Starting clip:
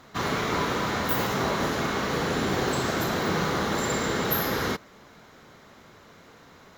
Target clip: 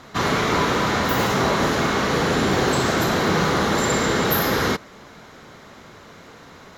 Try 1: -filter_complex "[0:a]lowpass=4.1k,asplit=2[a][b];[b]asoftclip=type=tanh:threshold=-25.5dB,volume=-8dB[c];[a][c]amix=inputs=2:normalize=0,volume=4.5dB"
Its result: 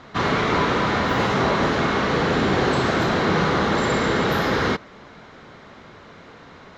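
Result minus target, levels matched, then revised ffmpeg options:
8000 Hz band -9.0 dB
-filter_complex "[0:a]lowpass=13k,asplit=2[a][b];[b]asoftclip=type=tanh:threshold=-25.5dB,volume=-8dB[c];[a][c]amix=inputs=2:normalize=0,volume=4.5dB"

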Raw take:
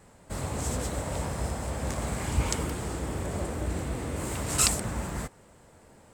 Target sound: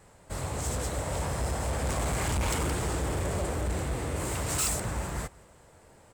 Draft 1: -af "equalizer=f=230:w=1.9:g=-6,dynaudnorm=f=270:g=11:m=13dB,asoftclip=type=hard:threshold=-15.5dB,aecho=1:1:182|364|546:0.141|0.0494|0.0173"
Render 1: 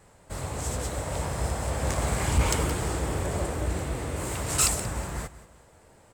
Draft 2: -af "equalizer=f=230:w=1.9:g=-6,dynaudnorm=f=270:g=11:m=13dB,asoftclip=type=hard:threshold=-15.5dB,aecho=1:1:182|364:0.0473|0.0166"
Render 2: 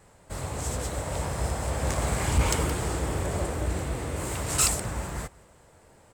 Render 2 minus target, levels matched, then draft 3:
hard clip: distortion -9 dB
-af "equalizer=f=230:w=1.9:g=-6,dynaudnorm=f=270:g=11:m=13dB,asoftclip=type=hard:threshold=-25.5dB,aecho=1:1:182|364:0.0473|0.0166"

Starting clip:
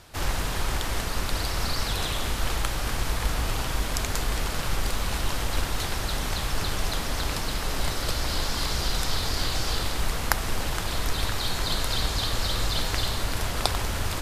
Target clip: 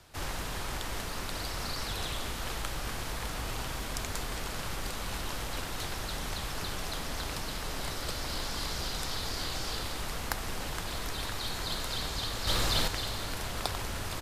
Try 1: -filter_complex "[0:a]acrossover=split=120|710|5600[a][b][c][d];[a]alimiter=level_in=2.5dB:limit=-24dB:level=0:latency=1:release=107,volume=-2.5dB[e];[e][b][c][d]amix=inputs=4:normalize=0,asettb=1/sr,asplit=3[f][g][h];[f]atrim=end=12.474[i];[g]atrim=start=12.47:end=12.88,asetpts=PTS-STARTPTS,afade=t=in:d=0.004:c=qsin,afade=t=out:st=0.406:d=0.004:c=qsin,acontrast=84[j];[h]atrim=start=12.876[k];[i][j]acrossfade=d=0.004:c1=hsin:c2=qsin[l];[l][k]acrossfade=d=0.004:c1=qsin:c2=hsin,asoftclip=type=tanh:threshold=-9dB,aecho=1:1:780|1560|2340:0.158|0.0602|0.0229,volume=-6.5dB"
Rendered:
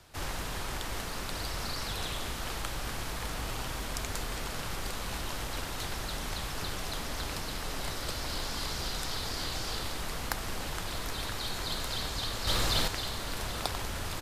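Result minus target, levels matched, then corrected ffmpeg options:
echo 0.311 s late
-filter_complex "[0:a]acrossover=split=120|710|5600[a][b][c][d];[a]alimiter=level_in=2.5dB:limit=-24dB:level=0:latency=1:release=107,volume=-2.5dB[e];[e][b][c][d]amix=inputs=4:normalize=0,asettb=1/sr,asplit=3[f][g][h];[f]atrim=end=12.474[i];[g]atrim=start=12.47:end=12.88,asetpts=PTS-STARTPTS,afade=t=in:d=0.004:c=qsin,afade=t=out:st=0.406:d=0.004:c=qsin,acontrast=84[j];[h]atrim=start=12.876[k];[i][j]acrossfade=d=0.004:c1=hsin:c2=qsin[l];[l][k]acrossfade=d=0.004:c1=qsin:c2=hsin,asoftclip=type=tanh:threshold=-9dB,aecho=1:1:469|938|1407:0.158|0.0602|0.0229,volume=-6.5dB"

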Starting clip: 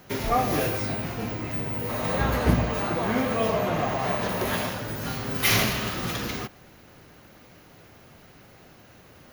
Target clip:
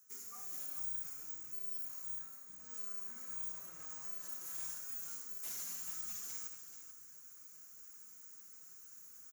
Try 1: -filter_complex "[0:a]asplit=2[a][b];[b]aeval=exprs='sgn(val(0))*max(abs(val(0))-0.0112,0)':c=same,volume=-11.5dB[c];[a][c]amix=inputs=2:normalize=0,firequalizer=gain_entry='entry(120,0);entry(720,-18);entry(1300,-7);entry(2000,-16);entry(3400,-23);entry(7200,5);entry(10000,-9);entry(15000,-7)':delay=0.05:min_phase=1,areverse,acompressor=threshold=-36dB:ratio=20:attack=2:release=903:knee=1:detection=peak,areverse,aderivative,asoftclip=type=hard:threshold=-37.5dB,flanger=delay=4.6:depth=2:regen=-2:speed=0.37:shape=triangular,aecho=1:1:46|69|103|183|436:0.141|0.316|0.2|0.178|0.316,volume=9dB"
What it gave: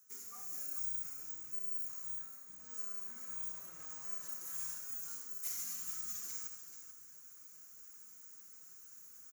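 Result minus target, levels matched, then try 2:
hard clip: distortion -16 dB
-filter_complex "[0:a]asplit=2[a][b];[b]aeval=exprs='sgn(val(0))*max(abs(val(0))-0.0112,0)':c=same,volume=-11.5dB[c];[a][c]amix=inputs=2:normalize=0,firequalizer=gain_entry='entry(120,0);entry(720,-18);entry(1300,-7);entry(2000,-16);entry(3400,-23);entry(7200,5);entry(10000,-9);entry(15000,-7)':delay=0.05:min_phase=1,areverse,acompressor=threshold=-36dB:ratio=20:attack=2:release=903:knee=1:detection=peak,areverse,aderivative,asoftclip=type=hard:threshold=-45.5dB,flanger=delay=4.6:depth=2:regen=-2:speed=0.37:shape=triangular,aecho=1:1:46|69|103|183|436:0.141|0.316|0.2|0.178|0.316,volume=9dB"

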